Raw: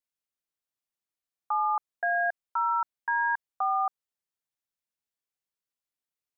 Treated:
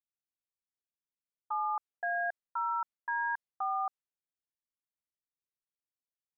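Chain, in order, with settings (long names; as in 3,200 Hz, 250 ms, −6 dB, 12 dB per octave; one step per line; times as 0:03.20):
low-pass that shuts in the quiet parts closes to 400 Hz, open at −25.5 dBFS
level −6 dB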